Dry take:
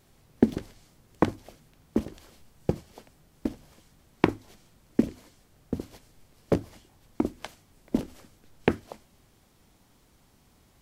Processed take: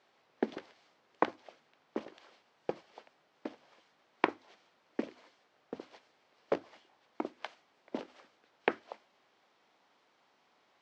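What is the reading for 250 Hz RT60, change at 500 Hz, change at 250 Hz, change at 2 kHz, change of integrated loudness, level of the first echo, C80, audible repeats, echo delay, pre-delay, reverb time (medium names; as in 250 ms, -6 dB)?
no reverb, -6.5 dB, -13.5 dB, -2.0 dB, -9.0 dB, no echo, no reverb, no echo, no echo, no reverb, no reverb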